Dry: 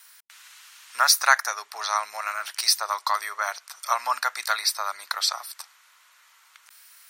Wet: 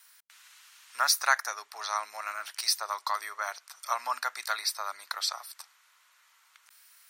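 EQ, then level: dynamic bell 290 Hz, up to +7 dB, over -49 dBFS, Q 1.6; -6.5 dB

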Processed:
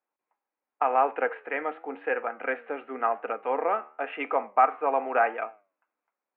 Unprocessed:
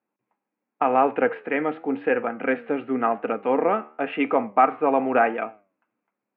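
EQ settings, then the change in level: high-pass 630 Hz 12 dB/octave; distance through air 360 m; 0.0 dB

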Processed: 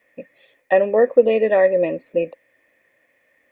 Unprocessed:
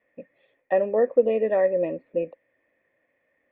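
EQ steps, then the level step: treble shelf 2.1 kHz +12 dB; +5.0 dB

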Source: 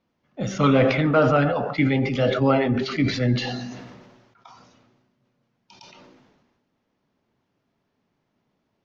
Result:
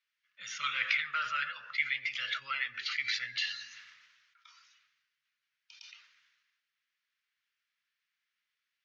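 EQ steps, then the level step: inverse Chebyshev high-pass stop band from 820 Hz, stop band 40 dB; treble shelf 6.1 kHz -9.5 dB; 0.0 dB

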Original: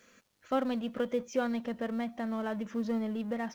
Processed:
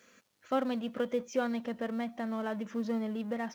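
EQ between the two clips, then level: high-pass 120 Hz 6 dB/octave; 0.0 dB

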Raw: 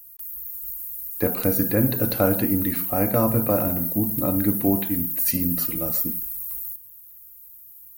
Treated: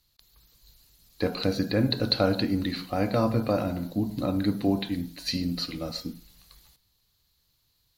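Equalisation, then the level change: resonant low-pass 4.2 kHz, resonance Q 6.8; -3.5 dB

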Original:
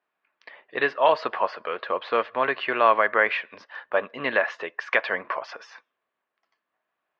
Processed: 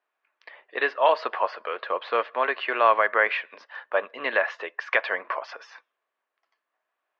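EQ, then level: high-pass 190 Hz 12 dB/octave; distance through air 53 m; tone controls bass -15 dB, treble +1 dB; 0.0 dB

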